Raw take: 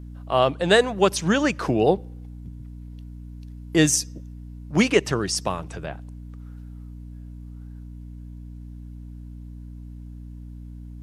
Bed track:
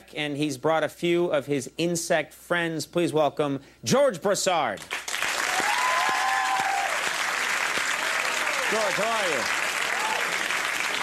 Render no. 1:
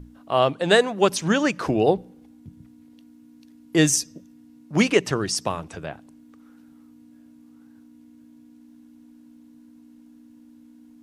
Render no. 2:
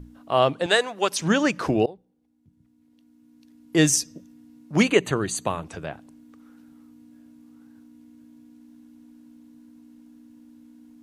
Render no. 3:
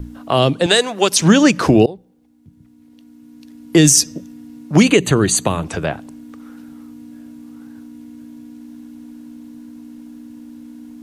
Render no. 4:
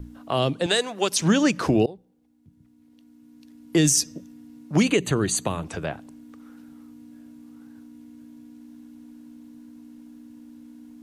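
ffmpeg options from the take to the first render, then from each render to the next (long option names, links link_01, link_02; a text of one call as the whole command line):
ffmpeg -i in.wav -af "bandreject=frequency=60:width_type=h:width=6,bandreject=frequency=120:width_type=h:width=6,bandreject=frequency=180:width_type=h:width=6" out.wav
ffmpeg -i in.wav -filter_complex "[0:a]asettb=1/sr,asplit=3[link_01][link_02][link_03];[link_01]atrim=end=0.664[link_04];[link_02]atrim=start=0.66:end=1.19,asetpts=PTS-STARTPTS,afade=type=in:duration=0.004:curve=qsin,afade=type=out:start_time=0.526:duration=0.004:curve=qsin,highpass=frequency=800:poles=1[link_05];[link_03]atrim=start=1.186[link_06];[link_04][link_05]acrossfade=duration=0.004:curve1=hsin:curve2=qsin[link_07];[link_07][link_06]acrossfade=duration=0.004:curve1=qsin:curve2=hsin,asettb=1/sr,asplit=3[link_08][link_09][link_10];[link_08]atrim=end=4.834[link_11];[link_09]atrim=start=4.83:end=5.65,asetpts=PTS-STARTPTS,afade=type=in:duration=0.004:curve=qsin,afade=type=out:start_time=0.816:duration=0.004:curve=qsin,asuperstop=centerf=5300:order=8:qfactor=3.8[link_12];[link_10]atrim=start=5.646[link_13];[link_11][link_12]acrossfade=duration=0.004:curve1=hsin:curve2=qsin[link_14];[link_14][link_13]acrossfade=duration=0.004:curve1=qsin:curve2=hsin,asplit=2[link_15][link_16];[link_15]atrim=end=1.86,asetpts=PTS-STARTPTS,afade=type=out:start_time=1.856:duration=0.004:curve=hsin:silence=0.0749894[link_17];[link_16]atrim=start=1.86,asetpts=PTS-STARTPTS,afade=type=in:duration=2.01:curve=qua:silence=0.0749894[link_18];[link_17][link_18]concat=n=2:v=0:a=1" out.wav
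ffmpeg -i in.wav -filter_complex "[0:a]acrossover=split=380|3000[link_01][link_02][link_03];[link_02]acompressor=threshold=-30dB:ratio=6[link_04];[link_01][link_04][link_03]amix=inputs=3:normalize=0,alimiter=level_in=13dB:limit=-1dB:release=50:level=0:latency=1" out.wav
ffmpeg -i in.wav -af "volume=-8.5dB" out.wav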